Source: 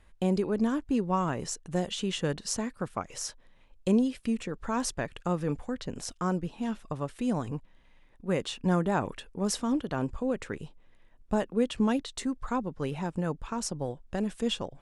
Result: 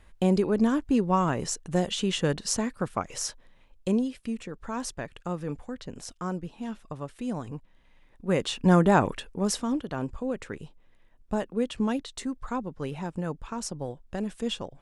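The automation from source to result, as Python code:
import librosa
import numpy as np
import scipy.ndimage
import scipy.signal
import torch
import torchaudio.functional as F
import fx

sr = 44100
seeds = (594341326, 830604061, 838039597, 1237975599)

y = fx.gain(x, sr, db=fx.line((3.25, 4.0), (4.2, -3.0), (7.52, -3.0), (8.91, 8.0), (9.82, -1.0)))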